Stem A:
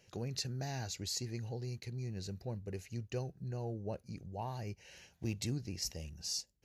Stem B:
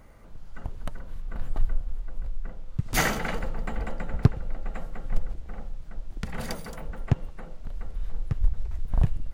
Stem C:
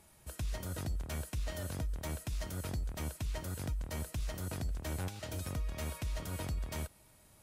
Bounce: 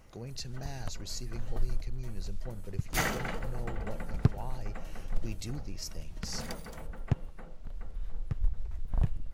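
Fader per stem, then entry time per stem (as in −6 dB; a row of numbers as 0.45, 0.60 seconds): −2.5, −6.0, −15.0 decibels; 0.00, 0.00, 0.00 seconds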